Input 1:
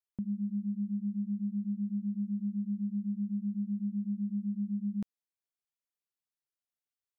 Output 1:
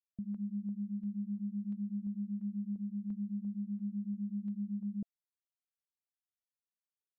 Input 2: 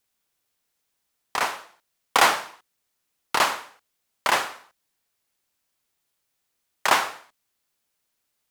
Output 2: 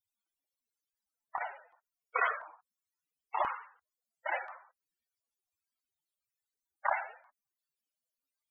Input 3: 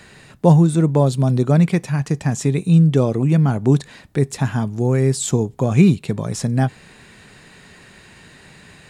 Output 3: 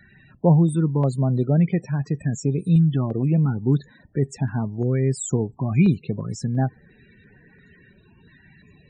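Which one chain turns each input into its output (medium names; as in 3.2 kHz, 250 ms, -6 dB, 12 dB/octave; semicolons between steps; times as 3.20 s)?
loudest bins only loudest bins 32; step-sequenced notch 2.9 Hz 480–3500 Hz; trim -4 dB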